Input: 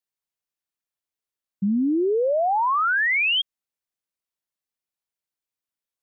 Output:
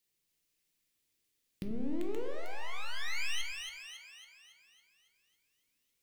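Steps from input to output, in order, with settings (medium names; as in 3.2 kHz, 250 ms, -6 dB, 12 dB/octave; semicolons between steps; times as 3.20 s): one-sided wavefolder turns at -23.5 dBFS; inverted gate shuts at -36 dBFS, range -24 dB; two-band feedback delay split 680 Hz, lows 87 ms, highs 277 ms, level -4.5 dB; in parallel at -7.5 dB: bit crusher 6-bit; on the sum: high-order bell 960 Hz -10 dB; on a send at -5 dB: reverberation RT60 0.60 s, pre-delay 6 ms; on the sum: trim +8.5 dB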